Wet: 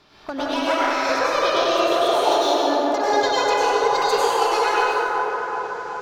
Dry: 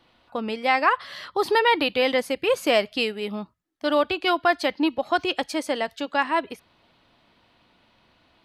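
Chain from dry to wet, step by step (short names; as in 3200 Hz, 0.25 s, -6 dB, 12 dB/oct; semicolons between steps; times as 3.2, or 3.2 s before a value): speed glide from 121% -> 160%; dynamic EQ 2200 Hz, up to -4 dB, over -31 dBFS, Q 0.88; compressor 6:1, threshold -31 dBFS, peak gain reduction 14 dB; treble ducked by the level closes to 2700 Hz, closed at -20 dBFS; overloaded stage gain 25.5 dB; on a send: band-limited delay 0.376 s, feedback 63%, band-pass 800 Hz, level -3.5 dB; on the sum: plate-style reverb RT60 2.6 s, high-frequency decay 0.55×, pre-delay 85 ms, DRR -9 dB; gain +5 dB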